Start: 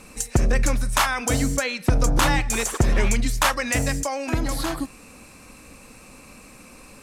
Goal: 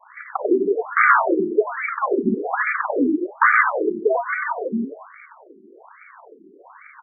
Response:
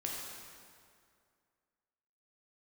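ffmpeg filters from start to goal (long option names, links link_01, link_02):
-filter_complex "[0:a]highpass=frequency=300:width_type=q:width=0.5412,highpass=frequency=300:width_type=q:width=1.307,lowpass=frequency=3100:width_type=q:width=0.5176,lowpass=frequency=3100:width_type=q:width=0.7071,lowpass=frequency=3100:width_type=q:width=1.932,afreqshift=-140,adynamicequalizer=threshold=0.0141:dfrequency=550:dqfactor=1.2:tfrequency=550:tqfactor=1.2:attack=5:release=100:ratio=0.375:range=2:mode=cutabove:tftype=bell,acrusher=bits=8:dc=4:mix=0:aa=0.000001,asettb=1/sr,asplit=3[link_01][link_02][link_03];[link_01]atrim=end=1.244[link_04];[link_02]atrim=start=1.24:end=2.49,asetpts=PTS-STARTPTS,afade=type=in:duration=0.004:curve=qsin,afade=type=out:start_time=1.246:duration=0.004:curve=qsin,asubboost=boost=11.5:cutoff=240[link_05];[link_03]atrim=start=2.486[link_06];[link_04][link_05]acrossfade=duration=0.004:curve1=hsin:curve2=qsin[link_07];[link_07][link_06]acrossfade=duration=0.004:curve1=qsin:curve2=hsin,asplit=5[link_08][link_09][link_10][link_11][link_12];[link_09]adelay=94,afreqshift=40,volume=-3.5dB[link_13];[link_10]adelay=188,afreqshift=80,volume=-12.9dB[link_14];[link_11]adelay=282,afreqshift=120,volume=-22.2dB[link_15];[link_12]adelay=376,afreqshift=160,volume=-31.6dB[link_16];[link_08][link_13][link_14][link_15][link_16]amix=inputs=5:normalize=0,alimiter=level_in=12.5dB:limit=-1dB:release=50:level=0:latency=1,afftfilt=real='re*between(b*sr/1024,280*pow(1700/280,0.5+0.5*sin(2*PI*1.2*pts/sr))/1.41,280*pow(1700/280,0.5+0.5*sin(2*PI*1.2*pts/sr))*1.41)':imag='im*between(b*sr/1024,280*pow(1700/280,0.5+0.5*sin(2*PI*1.2*pts/sr))/1.41,280*pow(1700/280,0.5+0.5*sin(2*PI*1.2*pts/sr))*1.41)':win_size=1024:overlap=0.75"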